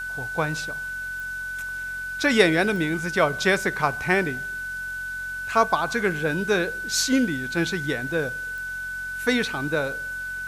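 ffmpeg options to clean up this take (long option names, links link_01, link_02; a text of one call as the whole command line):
ffmpeg -i in.wav -af "adeclick=threshold=4,bandreject=frequency=45.1:width_type=h:width=4,bandreject=frequency=90.2:width_type=h:width=4,bandreject=frequency=135.3:width_type=h:width=4,bandreject=frequency=180.4:width_type=h:width=4,bandreject=frequency=225.5:width_type=h:width=4,bandreject=frequency=1500:width=30,afwtdn=0.004" out.wav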